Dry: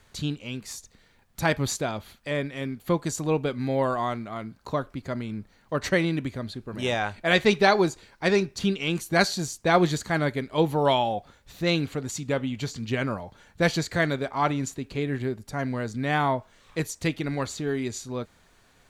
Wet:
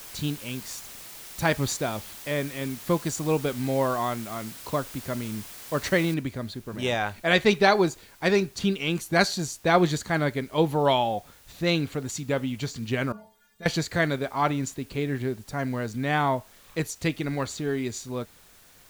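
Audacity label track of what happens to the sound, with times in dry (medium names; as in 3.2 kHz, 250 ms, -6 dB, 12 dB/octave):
6.140000	6.140000	noise floor step -43 dB -56 dB
13.120000	13.660000	inharmonic resonator 210 Hz, decay 0.31 s, inharmonicity 0.008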